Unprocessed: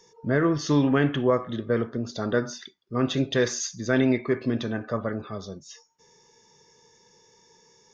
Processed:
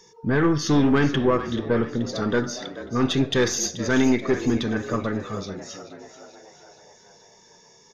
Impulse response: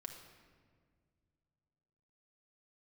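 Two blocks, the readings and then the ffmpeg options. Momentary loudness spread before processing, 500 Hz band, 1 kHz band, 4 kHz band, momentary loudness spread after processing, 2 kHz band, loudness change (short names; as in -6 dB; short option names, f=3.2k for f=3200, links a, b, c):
13 LU, +1.5 dB, +3.5 dB, +5.0 dB, 13 LU, +3.0 dB, +2.5 dB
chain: -filter_complex "[0:a]equalizer=f=610:w=2.7:g=-7.5,acontrast=24,aeval=exprs='(tanh(3.55*val(0)+0.35)-tanh(0.35))/3.55':c=same,asplit=7[a][b][c][d][e][f][g];[b]adelay=432,afreqshift=76,volume=-14dB[h];[c]adelay=864,afreqshift=152,volume=-19.2dB[i];[d]adelay=1296,afreqshift=228,volume=-24.4dB[j];[e]adelay=1728,afreqshift=304,volume=-29.6dB[k];[f]adelay=2160,afreqshift=380,volume=-34.8dB[l];[g]adelay=2592,afreqshift=456,volume=-40dB[m];[a][h][i][j][k][l][m]amix=inputs=7:normalize=0,asplit=2[n][o];[1:a]atrim=start_sample=2205[p];[o][p]afir=irnorm=-1:irlink=0,volume=-13dB[q];[n][q]amix=inputs=2:normalize=0"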